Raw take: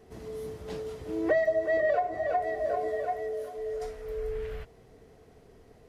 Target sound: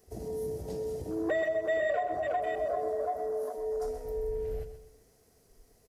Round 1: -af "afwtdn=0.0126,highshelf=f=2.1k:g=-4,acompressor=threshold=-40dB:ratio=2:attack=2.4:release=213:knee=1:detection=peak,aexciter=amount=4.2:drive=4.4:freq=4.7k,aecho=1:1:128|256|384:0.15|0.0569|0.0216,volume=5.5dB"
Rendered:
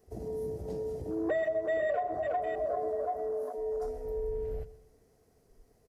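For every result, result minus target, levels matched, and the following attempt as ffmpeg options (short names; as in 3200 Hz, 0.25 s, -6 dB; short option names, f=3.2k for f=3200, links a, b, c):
4000 Hz band -5.5 dB; echo-to-direct -6.5 dB
-af "afwtdn=0.0126,highshelf=f=2.1k:g=5,acompressor=threshold=-40dB:ratio=2:attack=2.4:release=213:knee=1:detection=peak,aexciter=amount=4.2:drive=4.4:freq=4.7k,aecho=1:1:128|256|384:0.15|0.0569|0.0216,volume=5.5dB"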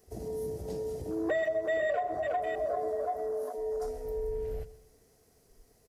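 echo-to-direct -6.5 dB
-af "afwtdn=0.0126,highshelf=f=2.1k:g=5,acompressor=threshold=-40dB:ratio=2:attack=2.4:release=213:knee=1:detection=peak,aexciter=amount=4.2:drive=4.4:freq=4.7k,aecho=1:1:128|256|384|512:0.316|0.12|0.0457|0.0174,volume=5.5dB"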